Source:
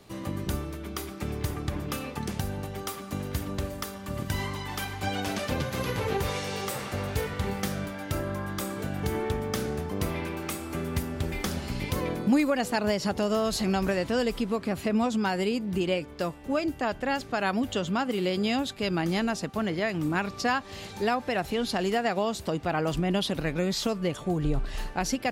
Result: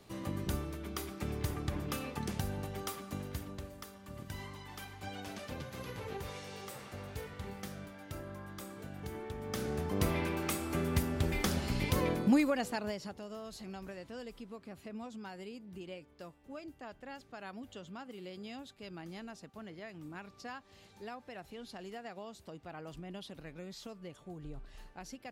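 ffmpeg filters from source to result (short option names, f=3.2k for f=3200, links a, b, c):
-af "volume=7dB,afade=t=out:st=2.85:d=0.78:silence=0.375837,afade=t=in:st=9.34:d=0.68:silence=0.251189,afade=t=out:st=12.06:d=0.74:silence=0.354813,afade=t=out:st=12.8:d=0.38:silence=0.375837"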